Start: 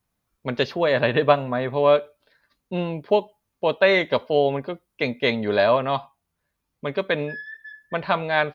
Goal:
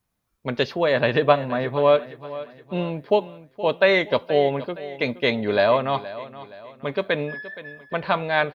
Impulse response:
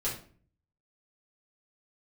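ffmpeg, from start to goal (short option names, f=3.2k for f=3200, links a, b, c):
-af "aecho=1:1:471|942|1413|1884:0.158|0.0666|0.028|0.0117"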